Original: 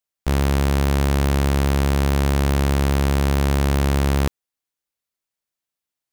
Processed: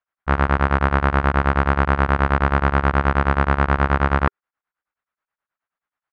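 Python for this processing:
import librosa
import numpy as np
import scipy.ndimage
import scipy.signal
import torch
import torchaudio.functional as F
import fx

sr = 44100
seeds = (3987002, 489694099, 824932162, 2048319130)

y = fx.curve_eq(x, sr, hz=(400.0, 1400.0, 8600.0), db=(0, 14, -27))
y = y * np.abs(np.cos(np.pi * 9.4 * np.arange(len(y)) / sr))
y = F.gain(torch.from_numpy(y), 1.5).numpy()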